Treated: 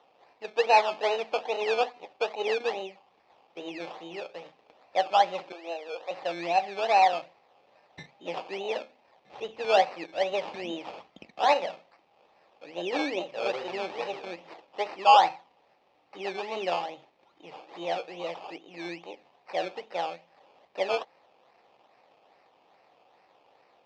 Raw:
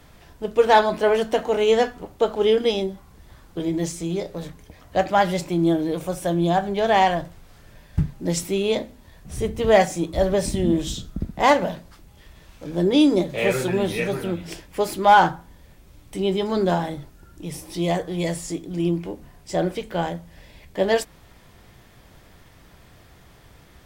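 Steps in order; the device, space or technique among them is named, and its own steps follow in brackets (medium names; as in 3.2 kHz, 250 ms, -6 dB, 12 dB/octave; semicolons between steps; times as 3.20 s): 5.52–6.11 s: steep high-pass 400 Hz 48 dB/octave; circuit-bent sampling toy (decimation with a swept rate 18×, swing 60% 2.4 Hz; cabinet simulation 490–4800 Hz, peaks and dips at 520 Hz +5 dB, 790 Hz +9 dB, 1.5 kHz -8 dB, 2.5 kHz +5 dB); trim -8.5 dB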